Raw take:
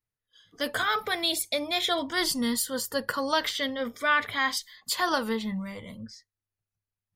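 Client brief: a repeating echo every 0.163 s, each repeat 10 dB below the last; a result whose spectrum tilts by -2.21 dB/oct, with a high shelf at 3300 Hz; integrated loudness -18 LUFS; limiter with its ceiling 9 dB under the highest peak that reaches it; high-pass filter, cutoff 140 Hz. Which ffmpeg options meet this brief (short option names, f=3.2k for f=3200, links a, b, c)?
-af "highpass=140,highshelf=f=3.3k:g=7.5,alimiter=limit=-16.5dB:level=0:latency=1,aecho=1:1:163|326|489|652:0.316|0.101|0.0324|0.0104,volume=9dB"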